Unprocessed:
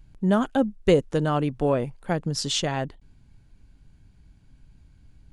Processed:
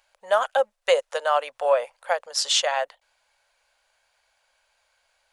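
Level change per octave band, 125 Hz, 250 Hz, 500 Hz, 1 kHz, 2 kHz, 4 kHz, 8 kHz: under -40 dB, under -30 dB, +2.0 dB, +5.5 dB, +6.0 dB, +5.0 dB, +5.0 dB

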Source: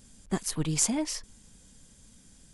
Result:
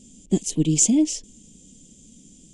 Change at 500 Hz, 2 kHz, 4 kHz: +7.5 dB, -4.0 dB, +2.5 dB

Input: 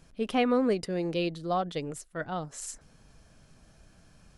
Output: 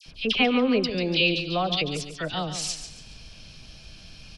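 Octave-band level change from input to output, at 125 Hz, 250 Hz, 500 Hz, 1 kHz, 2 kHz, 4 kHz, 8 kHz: +5.5 dB, +4.0 dB, +2.5 dB, +2.0 dB, +12.0 dB, +16.0 dB, +6.5 dB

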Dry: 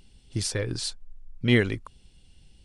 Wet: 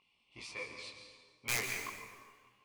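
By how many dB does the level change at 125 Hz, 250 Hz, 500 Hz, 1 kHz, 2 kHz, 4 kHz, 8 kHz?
-25.5 dB, -27.0 dB, -19.0 dB, 0.0 dB, -7.5 dB, -11.5 dB, -6.5 dB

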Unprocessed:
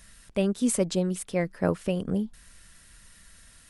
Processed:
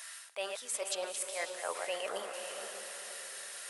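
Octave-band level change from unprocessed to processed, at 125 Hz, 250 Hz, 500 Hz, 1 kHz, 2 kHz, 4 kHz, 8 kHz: under -40 dB, -30.0 dB, -9.5 dB, -1.5 dB, 0.0 dB, +1.5 dB, -2.0 dB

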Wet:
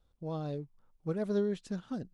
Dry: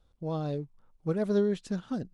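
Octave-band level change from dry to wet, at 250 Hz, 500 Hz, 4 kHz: -4.5 dB, -4.5 dB, -4.5 dB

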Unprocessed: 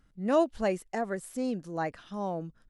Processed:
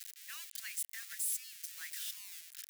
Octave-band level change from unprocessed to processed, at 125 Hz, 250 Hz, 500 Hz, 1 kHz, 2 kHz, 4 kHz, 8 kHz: under -40 dB, under -40 dB, under -40 dB, -30.0 dB, -6.5 dB, +3.0 dB, +11.0 dB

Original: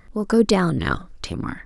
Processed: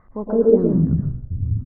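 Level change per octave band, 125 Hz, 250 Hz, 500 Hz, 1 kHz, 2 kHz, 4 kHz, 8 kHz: +6.0 dB, +1.0 dB, +4.5 dB, -12.5 dB, under -25 dB, under -40 dB, under -40 dB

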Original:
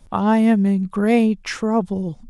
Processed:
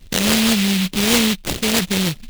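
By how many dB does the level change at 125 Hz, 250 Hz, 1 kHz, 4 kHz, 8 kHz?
+1.0 dB, -1.5 dB, -4.0 dB, +19.0 dB, no reading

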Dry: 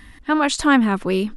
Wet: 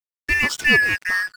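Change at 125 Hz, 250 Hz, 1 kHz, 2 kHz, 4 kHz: no reading, -15.0 dB, -13.0 dB, +8.5 dB, +2.0 dB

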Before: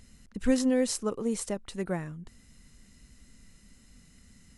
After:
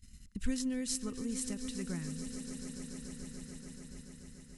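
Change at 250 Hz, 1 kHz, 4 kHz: -7.0 dB, -14.0 dB, -3.0 dB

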